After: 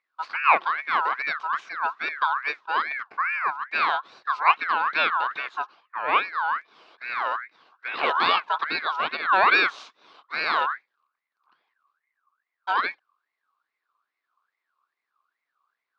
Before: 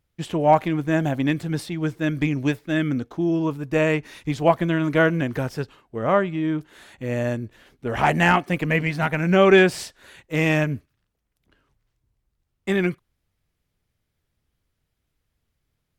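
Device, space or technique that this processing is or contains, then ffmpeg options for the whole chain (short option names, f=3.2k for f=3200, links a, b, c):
voice changer toy: -af "aeval=exprs='val(0)*sin(2*PI*1600*n/s+1600*0.3/2.4*sin(2*PI*2.4*n/s))':c=same,highpass=410,equalizer=f=560:t=q:w=4:g=-4,equalizer=f=1.1k:t=q:w=4:g=7,equalizer=f=1.9k:t=q:w=4:g=-9,equalizer=f=3.2k:t=q:w=4:g=-5,lowpass=f=4.2k:w=0.5412,lowpass=f=4.2k:w=1.3066"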